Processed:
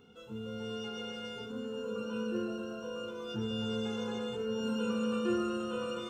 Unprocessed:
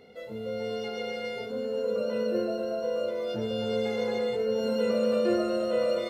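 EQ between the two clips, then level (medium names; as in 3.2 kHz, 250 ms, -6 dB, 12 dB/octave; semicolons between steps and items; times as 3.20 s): static phaser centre 3 kHz, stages 8; 0.0 dB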